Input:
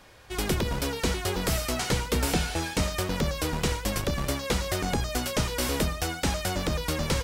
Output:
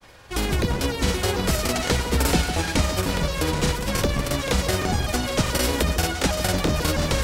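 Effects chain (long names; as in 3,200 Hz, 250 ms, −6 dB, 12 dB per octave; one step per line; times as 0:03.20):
granular cloud, spray 37 ms, pitch spread up and down by 0 semitones
on a send: echo with a time of its own for lows and highs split 1,100 Hz, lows 152 ms, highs 778 ms, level −10 dB
on the sum: level +6 dB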